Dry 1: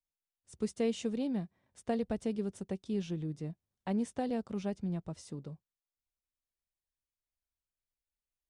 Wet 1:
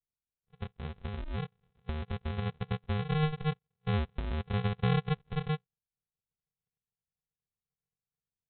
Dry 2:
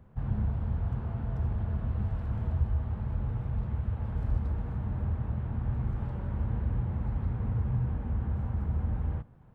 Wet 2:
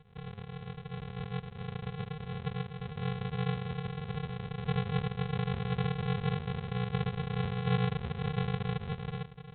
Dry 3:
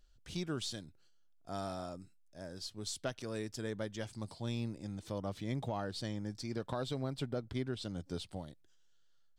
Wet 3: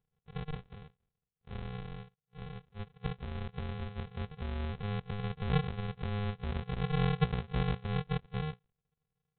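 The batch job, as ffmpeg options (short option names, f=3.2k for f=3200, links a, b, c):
-af "acompressor=threshold=-35dB:ratio=5,asubboost=boost=10.5:cutoff=160,afftfilt=real='re*between(b*sr/4096,120,2800)':imag='im*between(b*sr/4096,120,2800)':win_size=4096:overlap=0.75,aresample=8000,acrusher=samples=26:mix=1:aa=0.000001,aresample=44100"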